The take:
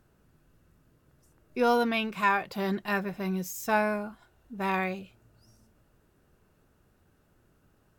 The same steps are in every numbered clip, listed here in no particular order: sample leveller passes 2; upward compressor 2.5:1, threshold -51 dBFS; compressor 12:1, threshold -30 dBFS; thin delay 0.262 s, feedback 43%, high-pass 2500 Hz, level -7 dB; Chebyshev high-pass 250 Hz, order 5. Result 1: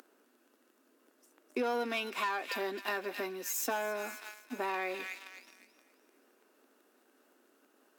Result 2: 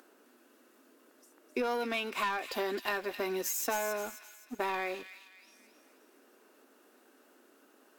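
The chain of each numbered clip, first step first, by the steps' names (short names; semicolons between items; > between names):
upward compressor > thin delay > sample leveller > compressor > Chebyshev high-pass; Chebyshev high-pass > sample leveller > upward compressor > compressor > thin delay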